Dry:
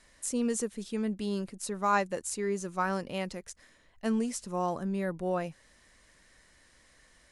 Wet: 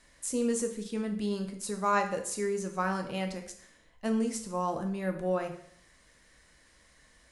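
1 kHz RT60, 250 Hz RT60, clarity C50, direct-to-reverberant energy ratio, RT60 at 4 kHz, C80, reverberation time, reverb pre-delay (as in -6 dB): 0.65 s, 0.65 s, 9.5 dB, 4.5 dB, 0.60 s, 12.5 dB, 0.65 s, 5 ms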